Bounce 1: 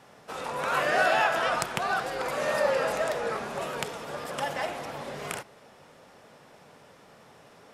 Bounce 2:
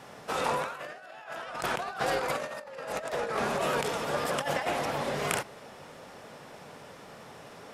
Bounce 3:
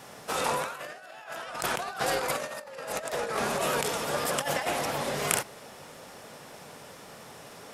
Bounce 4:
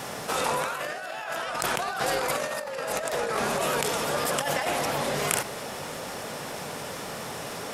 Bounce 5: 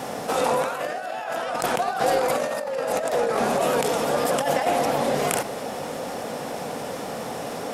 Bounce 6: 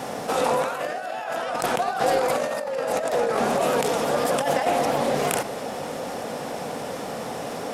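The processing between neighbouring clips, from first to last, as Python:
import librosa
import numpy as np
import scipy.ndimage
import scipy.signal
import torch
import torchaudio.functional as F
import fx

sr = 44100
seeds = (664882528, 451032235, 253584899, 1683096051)

y1 = fx.over_compress(x, sr, threshold_db=-33.0, ratio=-0.5)
y1 = F.gain(torch.from_numpy(y1), 1.5).numpy()
y2 = fx.high_shelf(y1, sr, hz=5600.0, db=11.0)
y3 = fx.env_flatten(y2, sr, amount_pct=50)
y3 = F.gain(torch.from_numpy(y3), -1.0).numpy()
y4 = fx.small_body(y3, sr, hz=(260.0, 500.0, 710.0), ring_ms=20, db=9)
y4 = F.gain(torch.from_numpy(y4), -1.0).numpy()
y5 = fx.doppler_dist(y4, sr, depth_ms=0.11)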